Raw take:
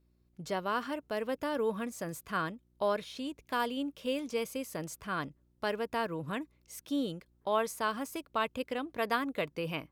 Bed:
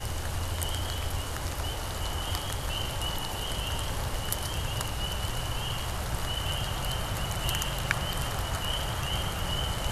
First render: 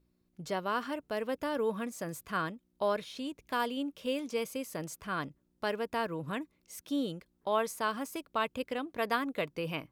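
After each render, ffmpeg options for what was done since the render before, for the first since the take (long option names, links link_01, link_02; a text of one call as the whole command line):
ffmpeg -i in.wav -af "bandreject=frequency=60:width_type=h:width=4,bandreject=frequency=120:width_type=h:width=4" out.wav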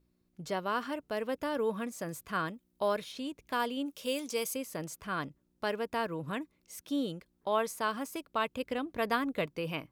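ffmpeg -i in.wav -filter_complex "[0:a]asettb=1/sr,asplit=3[link_01][link_02][link_03];[link_01]atrim=end=2.484[link_04];[link_02]atrim=start=2.48:end=3.12,asetpts=PTS-STARTPTS,afade=type=in:duration=0.004:curve=qsin,afade=type=out:start_time=0.636:duration=0.004:curve=qsin,highshelf=frequency=8200:gain=6.5[link_05];[link_03]atrim=start=3.116[link_06];[link_04][link_05]acrossfade=duration=0.004:curve1=hsin:curve2=qsin[link_07];[link_07][link_06]acrossfade=duration=0.004:curve1=qsin:curve2=hsin,asplit=3[link_08][link_09][link_10];[link_08]afade=type=out:start_time=3.85:duration=0.02[link_11];[link_09]bass=frequency=250:gain=-5,treble=frequency=4000:gain=10,afade=type=in:start_time=3.85:duration=0.02,afade=type=out:start_time=4.54:duration=0.02[link_12];[link_10]afade=type=in:start_time=4.54:duration=0.02[link_13];[link_11][link_12][link_13]amix=inputs=3:normalize=0,asettb=1/sr,asplit=3[link_14][link_15][link_16];[link_14]atrim=end=8.654[link_17];[link_15]atrim=start=8.65:end=9.46,asetpts=PTS-STARTPTS,afade=type=in:duration=0.004:curve=qsin,afade=type=out:start_time=0.806:duration=0.004:curve=qsin,lowshelf=frequency=150:gain=9.5[link_18];[link_16]atrim=start=9.456[link_19];[link_17][link_18]acrossfade=duration=0.004:curve1=hsin:curve2=qsin[link_20];[link_20][link_19]acrossfade=duration=0.004:curve1=qsin:curve2=hsin" out.wav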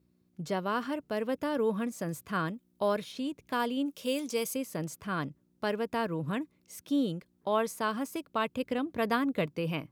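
ffmpeg -i in.wav -af "highpass=120,lowshelf=frequency=230:gain=11" out.wav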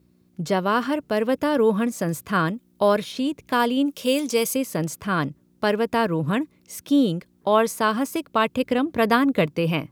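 ffmpeg -i in.wav -af "volume=10dB" out.wav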